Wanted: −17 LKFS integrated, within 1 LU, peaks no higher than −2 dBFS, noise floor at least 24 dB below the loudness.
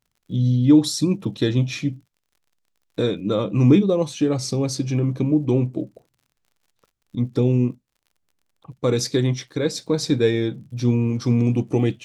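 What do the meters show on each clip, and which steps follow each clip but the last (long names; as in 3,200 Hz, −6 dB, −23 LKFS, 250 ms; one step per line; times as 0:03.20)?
crackle rate 47 per second; integrated loudness −21.0 LKFS; sample peak −4.5 dBFS; target loudness −17.0 LKFS
→ click removal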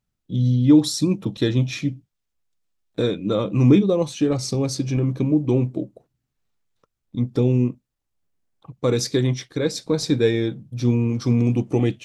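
crackle rate 0.083 per second; integrated loudness −21.0 LKFS; sample peak −4.5 dBFS; target loudness −17.0 LKFS
→ level +4 dB
brickwall limiter −2 dBFS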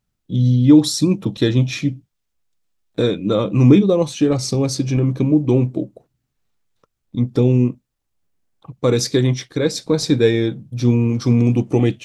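integrated loudness −17.0 LKFS; sample peak −2.0 dBFS; background noise floor −75 dBFS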